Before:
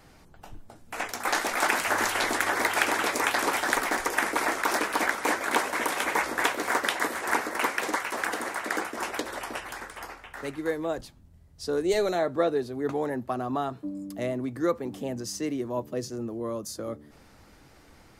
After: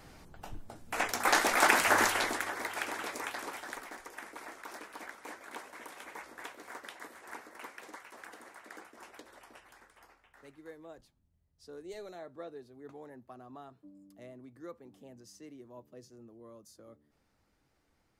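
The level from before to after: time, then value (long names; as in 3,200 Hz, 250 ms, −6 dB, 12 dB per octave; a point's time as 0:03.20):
0:01.99 +0.5 dB
0:02.55 −12 dB
0:03.13 −12 dB
0:04.04 −20 dB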